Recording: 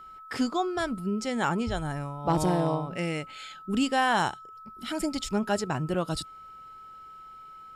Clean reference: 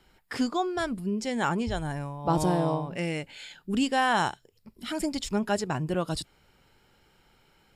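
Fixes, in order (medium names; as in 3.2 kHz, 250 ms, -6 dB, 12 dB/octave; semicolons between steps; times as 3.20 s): clip repair -15.5 dBFS; band-stop 1.3 kHz, Q 30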